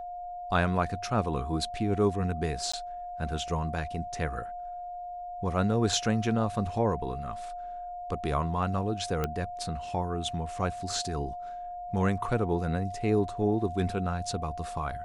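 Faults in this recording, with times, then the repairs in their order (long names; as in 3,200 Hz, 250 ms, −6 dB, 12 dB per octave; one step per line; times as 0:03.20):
whistle 710 Hz −36 dBFS
0:02.72–0:02.73: drop-out 15 ms
0:09.24: click −15 dBFS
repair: click removal
notch filter 710 Hz, Q 30
repair the gap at 0:02.72, 15 ms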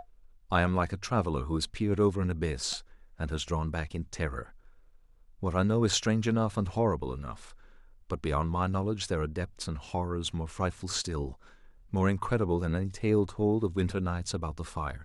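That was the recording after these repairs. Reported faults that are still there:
none of them is left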